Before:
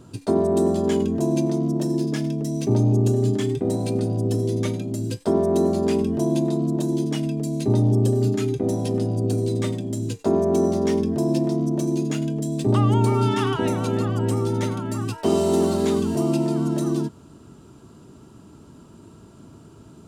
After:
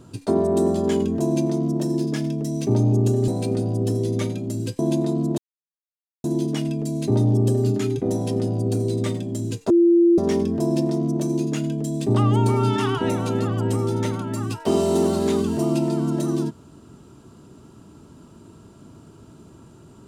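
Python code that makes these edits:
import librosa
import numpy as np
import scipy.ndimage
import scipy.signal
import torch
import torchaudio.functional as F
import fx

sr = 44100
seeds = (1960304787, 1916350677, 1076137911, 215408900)

y = fx.edit(x, sr, fx.cut(start_s=3.28, length_s=0.44),
    fx.cut(start_s=5.23, length_s=1.0),
    fx.insert_silence(at_s=6.82, length_s=0.86),
    fx.bleep(start_s=10.28, length_s=0.48, hz=342.0, db=-11.5), tone=tone)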